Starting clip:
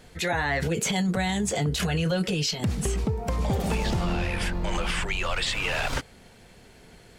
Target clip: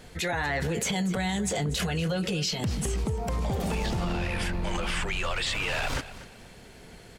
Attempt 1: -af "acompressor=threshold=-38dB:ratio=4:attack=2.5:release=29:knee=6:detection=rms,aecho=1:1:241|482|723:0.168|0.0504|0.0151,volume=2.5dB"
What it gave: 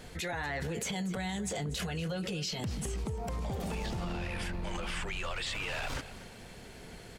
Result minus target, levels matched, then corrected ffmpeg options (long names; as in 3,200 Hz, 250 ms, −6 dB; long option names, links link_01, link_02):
downward compressor: peak gain reduction +7 dB
-af "acompressor=threshold=-28.5dB:ratio=4:attack=2.5:release=29:knee=6:detection=rms,aecho=1:1:241|482|723:0.168|0.0504|0.0151,volume=2.5dB"